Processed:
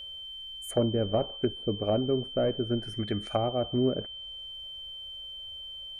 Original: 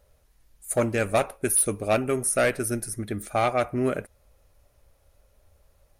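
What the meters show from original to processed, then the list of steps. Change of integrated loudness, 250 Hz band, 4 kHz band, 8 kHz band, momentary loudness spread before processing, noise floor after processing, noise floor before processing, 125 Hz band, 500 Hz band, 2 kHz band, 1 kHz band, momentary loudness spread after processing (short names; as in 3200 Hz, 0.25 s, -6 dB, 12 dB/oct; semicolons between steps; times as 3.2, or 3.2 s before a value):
-6.0 dB, 0.0 dB, +10.5 dB, under -20 dB, 9 LU, -42 dBFS, -64 dBFS, 0.0 dB, -3.0 dB, -18.0 dB, -8.0 dB, 11 LU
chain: treble ducked by the level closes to 510 Hz, closed at -22 dBFS; whine 3100 Hz -39 dBFS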